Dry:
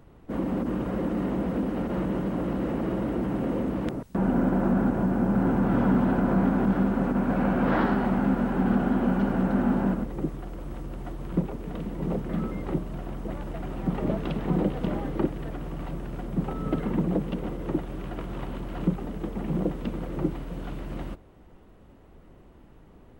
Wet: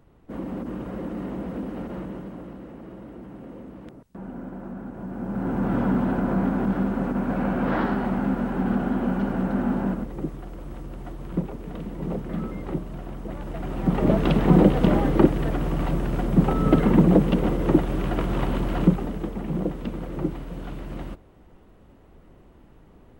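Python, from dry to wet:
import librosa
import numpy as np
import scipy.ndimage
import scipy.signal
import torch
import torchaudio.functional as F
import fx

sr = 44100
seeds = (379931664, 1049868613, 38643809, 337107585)

y = fx.gain(x, sr, db=fx.line((1.84, -4.0), (2.69, -13.0), (4.87, -13.0), (5.65, -0.5), (13.3, -0.5), (14.3, 9.5), (18.69, 9.5), (19.42, 0.5)))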